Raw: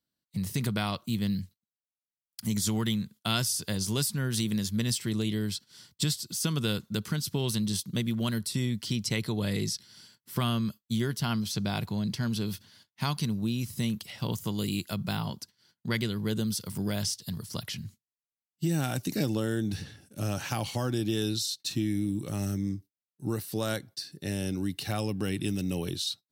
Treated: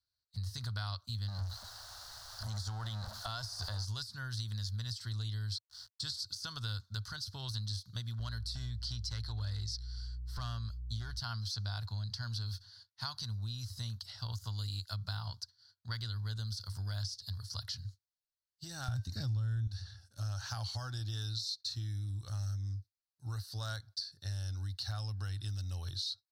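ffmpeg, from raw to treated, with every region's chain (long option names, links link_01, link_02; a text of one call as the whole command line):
ffmpeg -i in.wav -filter_complex "[0:a]asettb=1/sr,asplit=3[link_01][link_02][link_03];[link_01]atrim=end=1.284[link_04];[link_02]atrim=start=1.28:end=3.85,asetpts=PTS-STARTPTS,afade=type=in:duration=0.004:curve=qsin,afade=type=out:start_time=2.566:duration=0.004:curve=qsin,aeval=exprs='val(0)+0.5*0.0251*sgn(val(0))':channel_layout=same,equalizer=frequency=680:width_type=o:width=1.8:gain=10,acompressor=threshold=-26dB:ratio=6:attack=3.2:release=140:knee=1:detection=peak[link_05];[link_03]atrim=start=3.846[link_06];[link_04][link_05]acrossfade=duration=0.004:curve1=hsin:curve2=qsin[link_07];[link_07][link_06]acrossfade=duration=0.004:curve1=qsin:curve2=hsin,asettb=1/sr,asplit=3[link_08][link_09][link_10];[link_08]atrim=end=5.524[link_11];[link_09]atrim=start=5.52:end=6.25,asetpts=PTS-STARTPTS,afade=type=in:duration=0.004:curve=qsin,afade=type=out:start_time=0.726:duration=0.004:curve=qsin,lowpass=frequency=12000:width=0.5412,lowpass=frequency=12000:width=1.3066,highshelf=frequency=3300:gain=4,aeval=exprs='val(0)*gte(abs(val(0)),0.00398)':channel_layout=same[link_12];[link_10]atrim=start=6.246[link_13];[link_11][link_12]acrossfade=duration=0.004:curve1=hsin:curve2=qsin[link_14];[link_14][link_13]acrossfade=duration=0.004:curve1=qsin:curve2=hsin,asettb=1/sr,asplit=3[link_15][link_16][link_17];[link_15]atrim=end=8.194[link_18];[link_16]atrim=start=8.19:end=11.2,asetpts=PTS-STARTPTS,afade=type=in:duration=0.004:curve=qsin,afade=type=out:start_time=3.006:duration=0.004:curve=qsin,highshelf=frequency=9000:gain=-7.5,aeval=exprs='clip(val(0),-1,0.0708)':channel_layout=same,aeval=exprs='val(0)+0.00794*(sin(2*PI*60*n/s)+sin(2*PI*2*60*n/s)/2+sin(2*PI*3*60*n/s)/3+sin(2*PI*4*60*n/s)/4+sin(2*PI*5*60*n/s)/5)':channel_layout=same[link_19];[link_17]atrim=start=11.196[link_20];[link_18][link_19]acrossfade=duration=0.004:curve1=hsin:curve2=qsin[link_21];[link_21][link_20]acrossfade=duration=0.004:curve1=qsin:curve2=hsin,asettb=1/sr,asplit=3[link_22][link_23][link_24];[link_22]atrim=end=18.884[link_25];[link_23]atrim=start=18.88:end=19.67,asetpts=PTS-STARTPTS,afade=type=in:duration=0.004:curve=qsin,afade=type=out:start_time=0.786:duration=0.004:curve=qsin,bass=frequency=250:gain=15,treble=frequency=4000:gain=-3,bandreject=frequency=311.1:width_type=h:width=4,bandreject=frequency=622.2:width_type=h:width=4,bandreject=frequency=933.3:width_type=h:width=4,bandreject=frequency=1244.4:width_type=h:width=4,bandreject=frequency=1555.5:width_type=h:width=4,bandreject=frequency=1866.6:width_type=h:width=4,bandreject=frequency=2177.7:width_type=h:width=4,bandreject=frequency=2488.8:width_type=h:width=4,bandreject=frequency=2799.9:width_type=h:width=4,bandreject=frequency=3111:width_type=h:width=4,bandreject=frequency=3422.1:width_type=h:width=4,bandreject=frequency=3733.2:width_type=h:width=4,bandreject=frequency=4044.3:width_type=h:width=4,bandreject=frequency=4355.4:width_type=h:width=4,bandreject=frequency=4666.5:width_type=h:width=4,bandreject=frequency=4977.6:width_type=h:width=4,bandreject=frequency=5288.7:width_type=h:width=4,bandreject=frequency=5599.8:width_type=h:width=4,bandreject=frequency=5910.9:width_type=h:width=4,bandreject=frequency=6222:width_type=h:width=4,bandreject=frequency=6533.1:width_type=h:width=4,bandreject=frequency=6844.2:width_type=h:width=4,bandreject=frequency=7155.3:width_type=h:width=4,bandreject=frequency=7466.4:width_type=h:width=4,bandreject=frequency=7777.5:width_type=h:width=4,bandreject=frequency=8088.6:width_type=h:width=4,bandreject=frequency=8399.7:width_type=h:width=4[link_26];[link_24]atrim=start=19.666[link_27];[link_25][link_26]acrossfade=duration=0.004:curve1=hsin:curve2=qsin[link_28];[link_28][link_27]acrossfade=duration=0.004:curve1=qsin:curve2=hsin,deesser=0.65,firequalizer=gain_entry='entry(100,0);entry(150,-26);entry(260,-28);entry(380,-30);entry(670,-15);entry(1500,-6);entry(2300,-25);entry(4300,1);entry(7400,-14);entry(15000,-21)':delay=0.05:min_phase=1,acompressor=threshold=-40dB:ratio=3,volume=4dB" out.wav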